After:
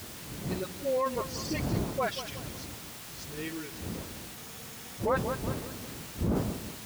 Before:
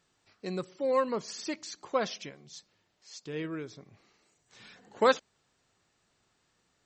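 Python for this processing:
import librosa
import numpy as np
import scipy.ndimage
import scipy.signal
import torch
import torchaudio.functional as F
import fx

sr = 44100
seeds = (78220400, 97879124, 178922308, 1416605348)

p1 = fx.bin_expand(x, sr, power=1.5)
p2 = fx.dmg_wind(p1, sr, seeds[0], corner_hz=190.0, level_db=-32.0)
p3 = fx.env_lowpass_down(p2, sr, base_hz=1400.0, full_db=-22.0)
p4 = fx.low_shelf(p3, sr, hz=400.0, db=-9.0)
p5 = fx.dispersion(p4, sr, late='highs', ms=57.0, hz=360.0)
p6 = p5 + fx.echo_feedback(p5, sr, ms=184, feedback_pct=43, wet_db=-14.0, dry=0)
p7 = fx.quant_dither(p6, sr, seeds[1], bits=8, dither='triangular')
p8 = scipy.signal.sosfilt(scipy.signal.butter(2, 54.0, 'highpass', fs=sr, output='sos'), p7)
p9 = fx.high_shelf(p8, sr, hz=5700.0, db=-5.5)
p10 = fx.over_compress(p9, sr, threshold_db=-33.0, ratio=-0.5)
p11 = p9 + (p10 * librosa.db_to_amplitude(1.5))
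p12 = fx.spec_freeze(p11, sr, seeds[2], at_s=4.37, hold_s=0.64)
y = p12 * librosa.db_to_amplitude(-1.5)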